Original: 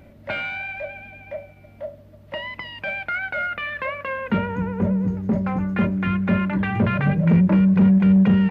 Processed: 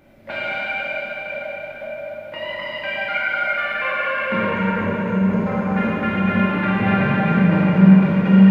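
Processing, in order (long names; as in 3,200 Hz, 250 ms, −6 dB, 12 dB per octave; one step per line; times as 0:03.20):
parametric band 71 Hz −12 dB 2 octaves
dense smooth reverb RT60 5 s, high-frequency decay 0.8×, DRR −9 dB
level −3.5 dB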